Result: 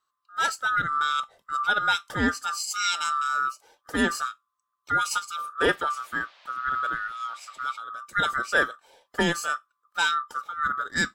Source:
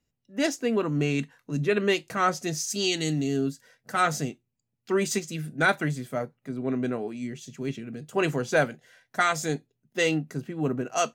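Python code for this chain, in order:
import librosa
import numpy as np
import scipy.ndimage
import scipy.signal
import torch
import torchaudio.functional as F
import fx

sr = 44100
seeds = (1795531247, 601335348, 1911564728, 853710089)

y = fx.band_swap(x, sr, width_hz=1000)
y = fx.dmg_noise_band(y, sr, seeds[0], low_hz=560.0, high_hz=4200.0, level_db=-56.0, at=(5.68, 7.72), fade=0.02)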